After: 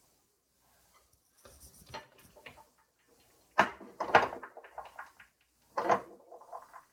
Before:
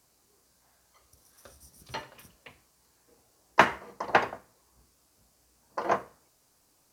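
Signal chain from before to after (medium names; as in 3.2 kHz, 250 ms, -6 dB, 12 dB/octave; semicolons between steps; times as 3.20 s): coarse spectral quantiser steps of 15 dB; repeats whose band climbs or falls 210 ms, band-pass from 310 Hz, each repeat 0.7 oct, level -10.5 dB; tremolo 1.2 Hz, depth 68%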